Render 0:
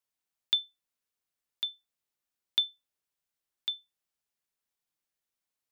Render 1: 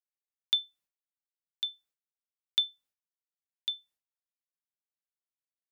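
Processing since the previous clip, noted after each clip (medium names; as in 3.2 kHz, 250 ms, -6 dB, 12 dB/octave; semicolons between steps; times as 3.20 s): expander -60 dBFS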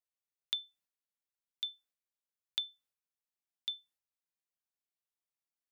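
compression, threshold -28 dBFS, peak gain reduction 6.5 dB; trim -3.5 dB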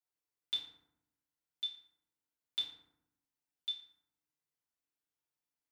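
FDN reverb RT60 0.8 s, low-frequency decay 1.4×, high-frequency decay 0.5×, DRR -8.5 dB; trim -8 dB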